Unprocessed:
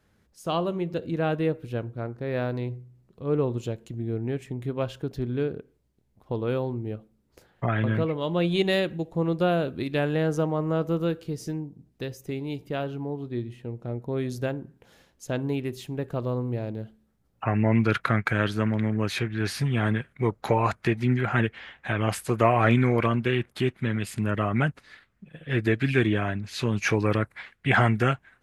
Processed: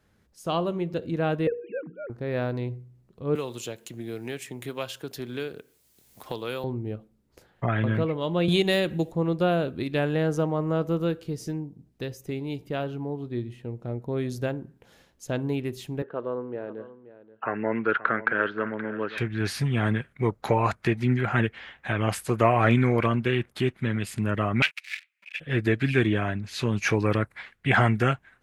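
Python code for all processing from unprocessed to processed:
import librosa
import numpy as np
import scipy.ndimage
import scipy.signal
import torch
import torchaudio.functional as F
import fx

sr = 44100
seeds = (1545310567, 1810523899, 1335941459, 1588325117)

y = fx.chain(x, sr, fx.sine_speech(),
    fx.hum_notches(base_hz=60, count=8), at=(1.47, 2.1))
y = fx.chain(y, sr, fx.tilt_eq(slope=4.0),
    fx.band_squash(depth_pct=70), at=(3.35, 6.64))
y = fx.chain(y, sr, fx.high_shelf(hz=6400.0, db=7.5),
    fx.band_squash(depth_pct=100), at=(8.48, 9.12))
y = fx.chain(y, sr, fx.cabinet(low_hz=330.0, low_slope=12, high_hz=2700.0, hz=(450.0, 720.0, 1500.0, 2300.0), db=(4, -4, 6, -8)),
    fx.echo_single(ms=529, db=-15.5), at=(16.02, 19.18))
y = fx.chain(y, sr, fx.leveller(passes=3),
    fx.highpass_res(hz=2400.0, q=5.7), at=(24.62, 25.4))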